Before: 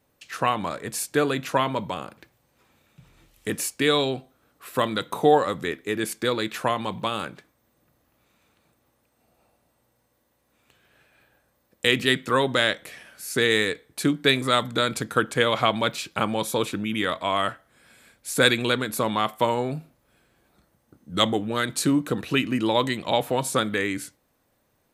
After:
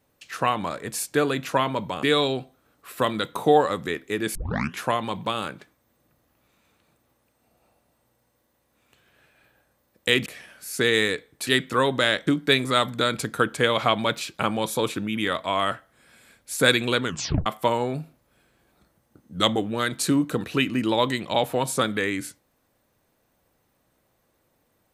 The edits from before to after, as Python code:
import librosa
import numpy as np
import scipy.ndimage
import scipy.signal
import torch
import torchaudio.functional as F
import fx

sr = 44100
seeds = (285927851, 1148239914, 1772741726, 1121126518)

y = fx.edit(x, sr, fx.cut(start_s=2.03, length_s=1.77),
    fx.tape_start(start_s=6.12, length_s=0.46),
    fx.move(start_s=12.03, length_s=0.8, to_s=14.04),
    fx.tape_stop(start_s=18.81, length_s=0.42), tone=tone)